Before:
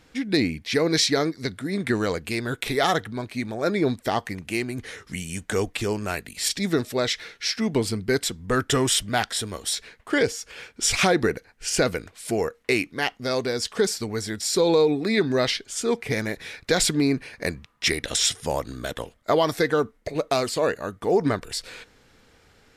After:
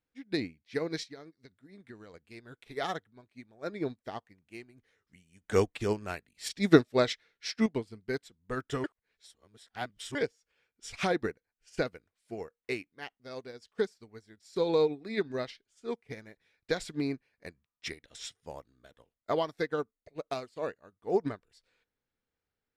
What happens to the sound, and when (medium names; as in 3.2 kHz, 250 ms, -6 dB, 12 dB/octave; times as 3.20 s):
1.03–2.14 s: compression 2:1, threshold -26 dBFS
5.44–7.66 s: gain +5.5 dB
8.84–10.15 s: reverse
whole clip: treble shelf 7.1 kHz -10 dB; upward expansion 2.5:1, over -34 dBFS